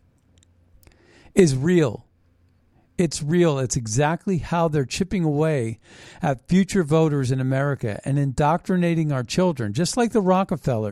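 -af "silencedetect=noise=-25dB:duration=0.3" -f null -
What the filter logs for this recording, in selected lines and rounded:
silence_start: 0.00
silence_end: 1.37 | silence_duration: 1.37
silence_start: 1.95
silence_end: 2.99 | silence_duration: 1.04
silence_start: 5.73
silence_end: 6.23 | silence_duration: 0.50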